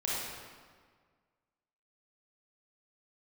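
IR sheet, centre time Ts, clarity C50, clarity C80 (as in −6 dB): 119 ms, −4.0 dB, −0.5 dB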